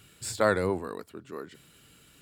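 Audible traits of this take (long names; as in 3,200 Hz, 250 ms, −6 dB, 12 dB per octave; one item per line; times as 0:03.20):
background noise floor −59 dBFS
spectral slope −4.5 dB per octave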